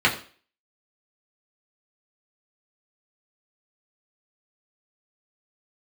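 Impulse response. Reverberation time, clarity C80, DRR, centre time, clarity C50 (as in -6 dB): 0.40 s, 15.0 dB, -4.0 dB, 18 ms, 11.5 dB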